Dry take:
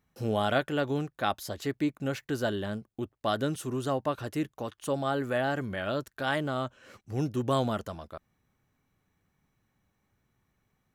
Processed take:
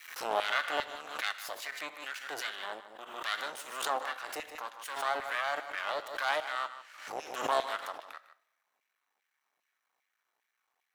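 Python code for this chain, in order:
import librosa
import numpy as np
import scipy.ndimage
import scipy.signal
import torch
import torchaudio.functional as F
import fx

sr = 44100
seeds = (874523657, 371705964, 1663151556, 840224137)

p1 = fx.octave_divider(x, sr, octaves=1, level_db=1.0)
p2 = fx.low_shelf(p1, sr, hz=170.0, db=-5.0)
p3 = np.maximum(p2, 0.0)
p4 = fx.filter_lfo_highpass(p3, sr, shape='saw_down', hz=2.5, low_hz=660.0, high_hz=2300.0, q=1.8)
p5 = p4 + fx.echo_single(p4, sr, ms=153, db=-13.5, dry=0)
p6 = fx.rev_double_slope(p5, sr, seeds[0], early_s=0.66, late_s=1.9, knee_db=-26, drr_db=13.0)
y = fx.pre_swell(p6, sr, db_per_s=71.0)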